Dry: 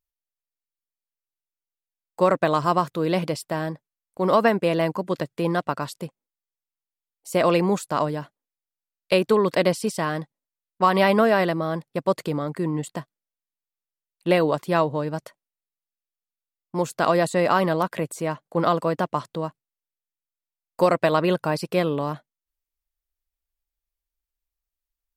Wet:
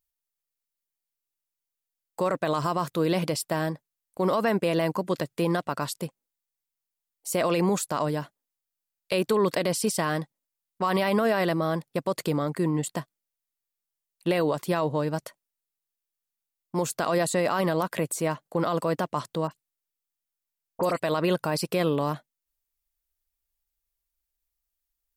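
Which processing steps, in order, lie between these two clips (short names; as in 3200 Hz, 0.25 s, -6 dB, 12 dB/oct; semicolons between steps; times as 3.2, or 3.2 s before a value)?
high shelf 5500 Hz +7.5 dB; limiter -15 dBFS, peak gain reduction 9 dB; 19.47–21 dispersion highs, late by 45 ms, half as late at 2600 Hz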